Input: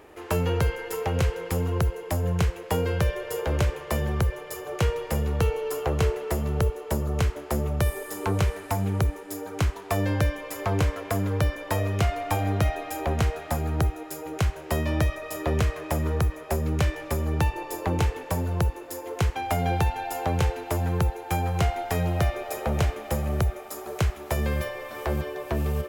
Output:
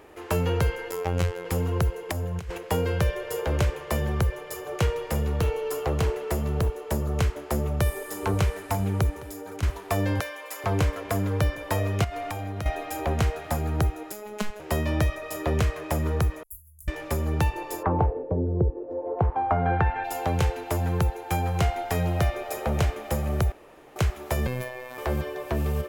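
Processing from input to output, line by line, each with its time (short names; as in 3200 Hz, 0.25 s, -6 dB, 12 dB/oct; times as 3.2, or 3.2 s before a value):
0.91–1.45 robotiser 88.1 Hz
2.09–2.58 negative-ratio compressor -28 dBFS, ratio -0.5
4.86–7.15 hard clip -19 dBFS
7.75–8.15 echo throw 0.47 s, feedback 85%, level -16.5 dB
9.21–9.63 compressor, threshold -34 dBFS
10.2–10.64 HPF 670 Hz
12.04–12.66 compressor 10:1, threshold -28 dBFS
14.12–14.6 robotiser 210 Hz
16.43–16.88 inverse Chebyshev band-stop 130–3800 Hz, stop band 60 dB
17.82–20.03 LFO low-pass sine 0.53 Hz -> 0.15 Hz 400–2700 Hz
23.52–23.96 room tone
24.47–24.98 robotiser 126 Hz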